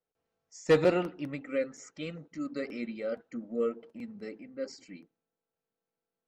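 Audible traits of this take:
background noise floor −90 dBFS
spectral slope −5.0 dB per octave

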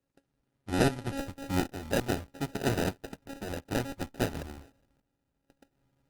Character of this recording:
a buzz of ramps at a fixed pitch in blocks of 32 samples
tremolo saw up 0.6 Hz, depth 70%
aliases and images of a low sample rate 1,100 Hz, jitter 0%
Opus

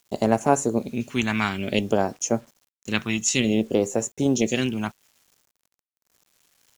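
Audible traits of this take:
phaser sweep stages 2, 0.56 Hz, lowest notch 490–3,400 Hz
a quantiser's noise floor 10 bits, dither none

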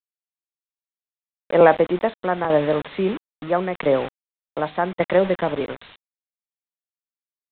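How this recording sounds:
a quantiser's noise floor 6 bits, dither none
tremolo saw down 0.8 Hz, depth 65%
mu-law

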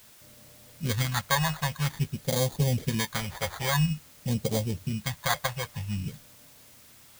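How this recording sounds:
aliases and images of a low sample rate 2,700 Hz, jitter 0%
phaser sweep stages 2, 0.5 Hz, lowest notch 270–1,400 Hz
a quantiser's noise floor 10 bits, dither triangular

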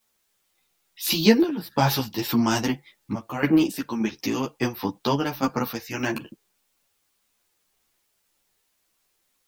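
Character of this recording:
sample-and-hold tremolo, depth 75%
a quantiser's noise floor 12 bits, dither triangular
a shimmering, thickened sound

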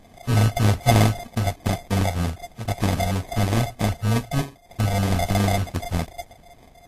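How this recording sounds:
a buzz of ramps at a fixed pitch in blocks of 64 samples
phaser sweep stages 12, 3.2 Hz, lowest notch 320–1,200 Hz
aliases and images of a low sample rate 1,400 Hz, jitter 0%
Ogg Vorbis

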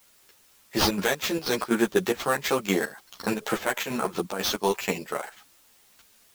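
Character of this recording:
aliases and images of a low sample rate 9,700 Hz, jitter 0%
chopped level 4.1 Hz, depth 65%, duty 65%
a quantiser's noise floor 10 bits, dither triangular
a shimmering, thickened sound

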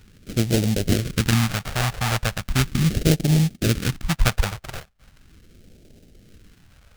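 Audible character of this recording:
aliases and images of a low sample rate 1,000 Hz, jitter 20%
phaser sweep stages 2, 0.38 Hz, lowest notch 270–1,100 Hz

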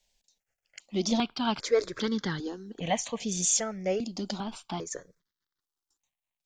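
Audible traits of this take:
notches that jump at a steady rate 2.5 Hz 330–2,500 Hz

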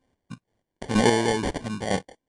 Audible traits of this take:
chopped level 2.1 Hz, depth 65%, duty 30%
aliases and images of a low sample rate 1,300 Hz, jitter 0%
AAC

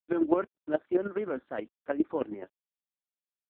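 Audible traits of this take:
a quantiser's noise floor 10 bits, dither none
chopped level 9.5 Hz, depth 60%, duty 20%
AMR narrowband

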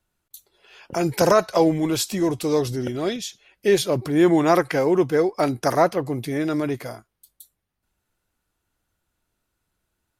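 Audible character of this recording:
background noise floor −78 dBFS
spectral slope −5.0 dB per octave

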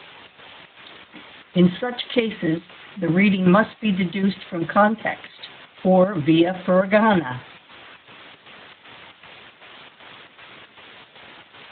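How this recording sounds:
a quantiser's noise floor 6 bits, dither triangular
chopped level 2.6 Hz, depth 60%, duty 70%
Speex

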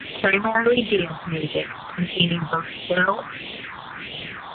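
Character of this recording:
tremolo saw down 9.1 Hz, depth 90%
a quantiser's noise floor 6 bits, dither triangular
phaser sweep stages 4, 1.5 Hz, lowest notch 400–1,400 Hz
AMR narrowband

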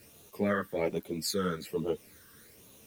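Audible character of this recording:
phaser sweep stages 12, 1.2 Hz, lowest notch 740–1,700 Hz
a quantiser's noise floor 10 bits, dither none
a shimmering, thickened sound

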